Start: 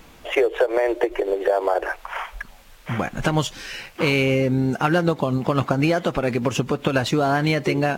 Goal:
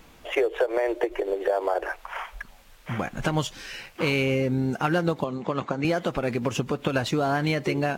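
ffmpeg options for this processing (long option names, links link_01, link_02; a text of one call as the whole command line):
ffmpeg -i in.wav -filter_complex "[0:a]asettb=1/sr,asplit=3[link_01][link_02][link_03];[link_01]atrim=end=5.244[link_04];[link_02]atrim=start=5.24:end=5.85,asetpts=PTS-STARTPTS,afade=type=in:duration=0.004:curve=qsin,afade=type=out:start_time=0.606:duration=0.004:curve=qsin,highpass=120,equalizer=frequency=120:width_type=q:width=4:gain=-10,equalizer=frequency=260:width_type=q:width=4:gain=-4,equalizer=frequency=690:width_type=q:width=4:gain=-4,equalizer=frequency=1400:width_type=q:width=4:gain=-3,equalizer=frequency=2900:width_type=q:width=4:gain=-4,equalizer=frequency=5100:width_type=q:width=4:gain=-9,lowpass=frequency=7000:width=0.5412,lowpass=frequency=7000:width=1.3066[link_05];[link_03]atrim=start=5.846[link_06];[link_04][link_05]acrossfade=duration=0.004:curve1=hsin:curve2=qsin[link_07];[link_07][link_06]acrossfade=duration=0.004:curve1=qsin:curve2=hsin,volume=-4.5dB" out.wav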